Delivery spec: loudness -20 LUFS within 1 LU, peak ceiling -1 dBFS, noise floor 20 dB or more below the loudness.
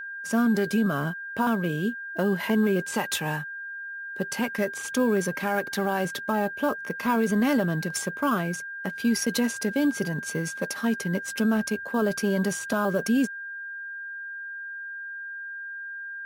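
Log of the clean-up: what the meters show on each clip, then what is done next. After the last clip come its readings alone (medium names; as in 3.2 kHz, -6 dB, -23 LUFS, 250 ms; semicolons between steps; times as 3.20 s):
steady tone 1.6 kHz; tone level -34 dBFS; loudness -27.0 LUFS; peak level -13.0 dBFS; loudness target -20.0 LUFS
-> band-stop 1.6 kHz, Q 30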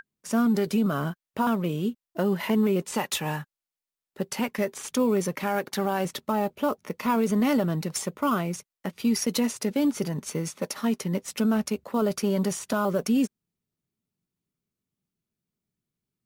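steady tone not found; loudness -27.0 LUFS; peak level -13.5 dBFS; loudness target -20.0 LUFS
-> trim +7 dB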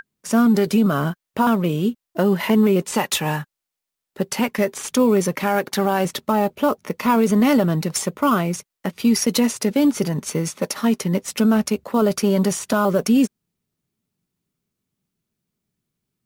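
loudness -20.0 LUFS; peak level -6.5 dBFS; noise floor -84 dBFS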